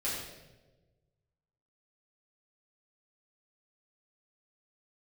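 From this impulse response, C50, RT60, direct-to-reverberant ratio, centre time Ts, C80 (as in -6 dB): 1.0 dB, 1.2 s, -8.0 dB, 68 ms, 3.0 dB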